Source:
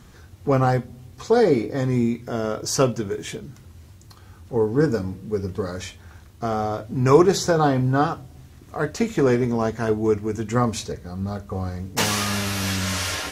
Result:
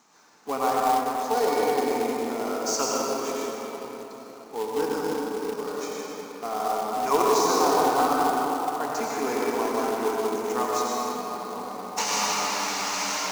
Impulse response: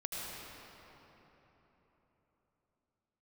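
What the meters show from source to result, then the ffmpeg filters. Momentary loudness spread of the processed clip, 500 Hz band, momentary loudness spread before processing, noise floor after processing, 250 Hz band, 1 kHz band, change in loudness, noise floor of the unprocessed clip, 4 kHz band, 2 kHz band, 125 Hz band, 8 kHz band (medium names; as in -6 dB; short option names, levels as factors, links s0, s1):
13 LU, -4.0 dB, 13 LU, -43 dBFS, -7.5 dB, +3.5 dB, -3.5 dB, -47 dBFS, -1.5 dB, -2.5 dB, -23.5 dB, +0.5 dB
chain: -filter_complex "[0:a]highpass=f=300:w=0.5412,highpass=f=300:w=1.3066,equalizer=f=360:t=q:w=4:g=-10,equalizer=f=530:t=q:w=4:g=-8,equalizer=f=890:t=q:w=4:g=6,equalizer=f=1700:t=q:w=4:g=-7,equalizer=f=3300:t=q:w=4:g=-8,equalizer=f=6300:t=q:w=4:g=5,lowpass=f=7500:w=0.5412,lowpass=f=7500:w=1.3066[s0];[1:a]atrim=start_sample=2205,asetrate=39690,aresample=44100[s1];[s0][s1]afir=irnorm=-1:irlink=0,acrusher=bits=3:mode=log:mix=0:aa=0.000001,volume=0.794"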